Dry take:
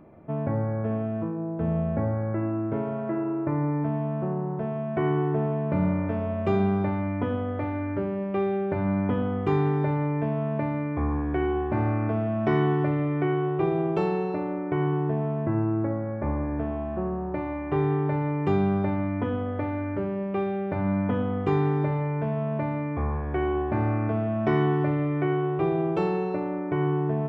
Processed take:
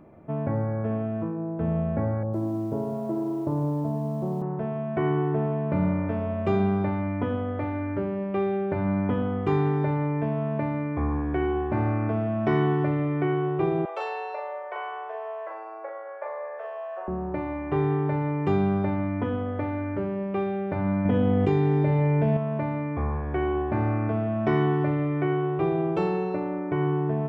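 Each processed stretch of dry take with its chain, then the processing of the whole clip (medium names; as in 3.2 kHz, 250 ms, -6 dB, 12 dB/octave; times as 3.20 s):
2.23–4.42 s: low-pass 1 kHz 24 dB/octave + bit-crushed delay 104 ms, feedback 55%, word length 8-bit, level -13 dB
13.85–17.08 s: elliptic high-pass 510 Hz, stop band 50 dB + doubling 39 ms -3.5 dB
21.05–22.37 s: peaking EQ 1.2 kHz -9.5 dB 0.74 oct + level flattener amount 100%
whole clip: none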